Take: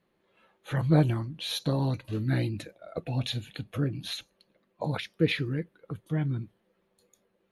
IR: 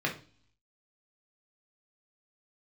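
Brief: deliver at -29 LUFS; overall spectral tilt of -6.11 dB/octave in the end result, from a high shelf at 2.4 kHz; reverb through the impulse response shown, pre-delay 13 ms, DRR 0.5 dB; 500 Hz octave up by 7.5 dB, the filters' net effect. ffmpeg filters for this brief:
-filter_complex "[0:a]equalizer=f=500:t=o:g=8.5,highshelf=f=2400:g=7,asplit=2[s0][s1];[1:a]atrim=start_sample=2205,adelay=13[s2];[s1][s2]afir=irnorm=-1:irlink=0,volume=0.355[s3];[s0][s3]amix=inputs=2:normalize=0,volume=0.473"

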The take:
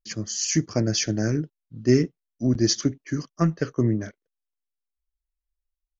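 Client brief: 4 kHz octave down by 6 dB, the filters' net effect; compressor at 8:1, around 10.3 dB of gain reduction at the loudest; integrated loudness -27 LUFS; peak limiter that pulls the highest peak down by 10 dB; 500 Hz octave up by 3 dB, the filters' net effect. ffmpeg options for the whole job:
-af "equalizer=f=500:t=o:g=4.5,equalizer=f=4000:t=o:g=-8.5,acompressor=threshold=0.0708:ratio=8,volume=2.11,alimiter=limit=0.168:level=0:latency=1"

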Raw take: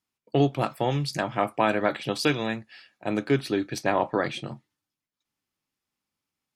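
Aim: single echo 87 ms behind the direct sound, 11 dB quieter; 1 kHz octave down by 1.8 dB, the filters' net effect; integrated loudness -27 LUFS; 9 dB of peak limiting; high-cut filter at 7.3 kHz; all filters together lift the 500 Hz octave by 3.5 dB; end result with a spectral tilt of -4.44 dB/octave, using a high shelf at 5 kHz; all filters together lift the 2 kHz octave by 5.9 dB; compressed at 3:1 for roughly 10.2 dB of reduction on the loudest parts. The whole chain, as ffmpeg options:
-af "lowpass=7300,equalizer=f=500:t=o:g=6,equalizer=f=1000:t=o:g=-8,equalizer=f=2000:t=o:g=8.5,highshelf=f=5000:g=8.5,acompressor=threshold=0.0398:ratio=3,alimiter=limit=0.0794:level=0:latency=1,aecho=1:1:87:0.282,volume=2.37"

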